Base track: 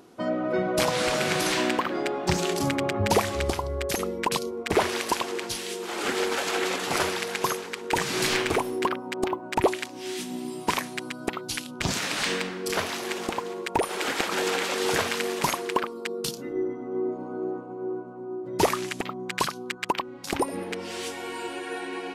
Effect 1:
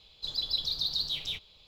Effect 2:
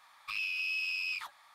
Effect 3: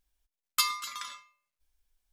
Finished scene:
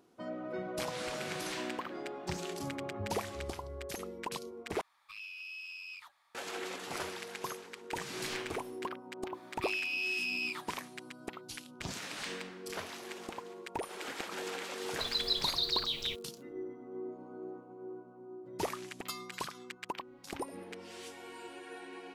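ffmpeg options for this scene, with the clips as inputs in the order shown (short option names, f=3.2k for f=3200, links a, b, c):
-filter_complex "[2:a]asplit=2[a][b];[0:a]volume=-13.5dB[c];[1:a]aeval=exprs='val(0)*gte(abs(val(0)),0.00316)':c=same[d];[c]asplit=2[e][f];[e]atrim=end=4.814[g];[a]atrim=end=1.54,asetpts=PTS-STARTPTS,volume=-11dB[h];[f]atrim=start=6.346[i];[b]atrim=end=1.54,asetpts=PTS-STARTPTS,volume=-0.5dB,afade=t=in:d=0.004:c=hsin,afade=t=out:st=1.536:d=0.004:c=hsin,adelay=9340[j];[d]atrim=end=1.67,asetpts=PTS-STARTPTS,volume=-1.5dB,afade=t=in:d=0.004:c=hsin,afade=t=out:st=1.666:d=0.004:c=hsin,adelay=14770[k];[3:a]atrim=end=2.12,asetpts=PTS-STARTPTS,volume=-15.5dB,afade=t=in:d=0.004:c=hsin,afade=t=out:st=2.116:d=0.004:c=hsin,adelay=18500[l];[g][h]acrossfade=d=0.004:c1=hsin:c2=hsin[m];[m][i]acrossfade=d=0.004:c1=hsin:c2=hsin[n];[n][j][k][l]amix=inputs=4:normalize=0"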